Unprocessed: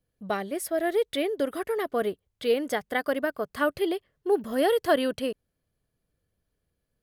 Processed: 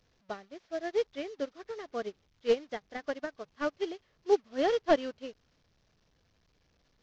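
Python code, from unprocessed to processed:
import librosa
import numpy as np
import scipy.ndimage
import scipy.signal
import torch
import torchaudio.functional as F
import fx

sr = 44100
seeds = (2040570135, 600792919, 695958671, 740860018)

y = fx.delta_mod(x, sr, bps=32000, step_db=-33.5)
y = fx.upward_expand(y, sr, threshold_db=-39.0, expansion=2.5)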